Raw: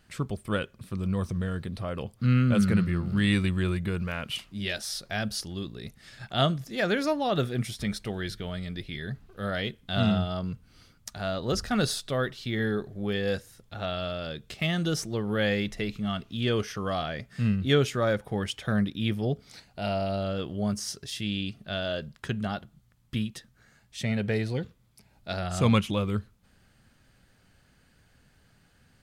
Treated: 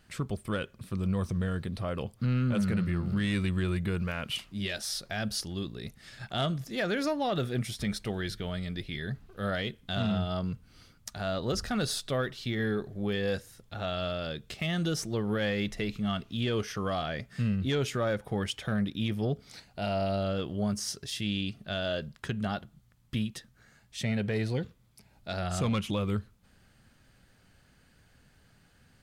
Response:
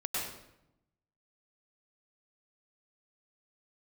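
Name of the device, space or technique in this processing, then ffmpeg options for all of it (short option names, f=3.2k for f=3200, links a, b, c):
soft clipper into limiter: -af "asoftclip=type=tanh:threshold=-16dB,alimiter=limit=-22dB:level=0:latency=1:release=134"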